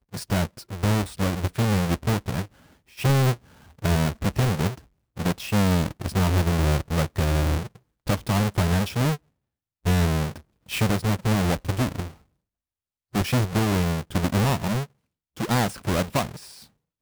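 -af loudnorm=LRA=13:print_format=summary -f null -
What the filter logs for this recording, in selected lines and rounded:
Input Integrated:    -24.8 LUFS
Input True Peak:     -13.3 dBTP
Input LRA:             2.4 LU
Input Threshold:     -35.4 LUFS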